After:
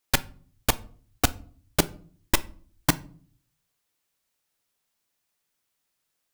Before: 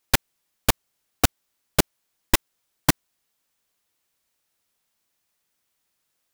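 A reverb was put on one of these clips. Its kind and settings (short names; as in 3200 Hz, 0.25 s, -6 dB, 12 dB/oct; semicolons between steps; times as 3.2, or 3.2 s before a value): shoebox room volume 430 m³, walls furnished, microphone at 0.36 m; gain -3 dB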